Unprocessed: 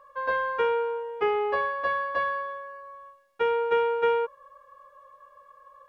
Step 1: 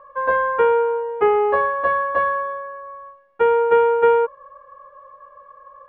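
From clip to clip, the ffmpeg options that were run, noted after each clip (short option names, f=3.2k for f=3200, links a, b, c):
-af "lowpass=1.6k,volume=9dB"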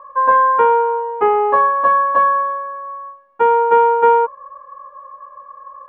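-af "equalizer=f=100:t=o:w=0.67:g=-4,equalizer=f=250:t=o:w=0.67:g=8,equalizer=f=1k:t=o:w=0.67:g=12,volume=-2dB"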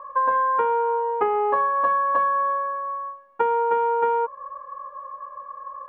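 -af "acompressor=threshold=-19dB:ratio=6"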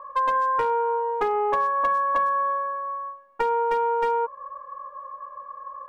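-af "aeval=exprs='clip(val(0),-1,0.158)':c=same,volume=-1.5dB"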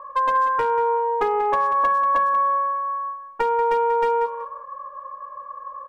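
-af "aecho=1:1:186|372:0.282|0.0479,volume=2dB"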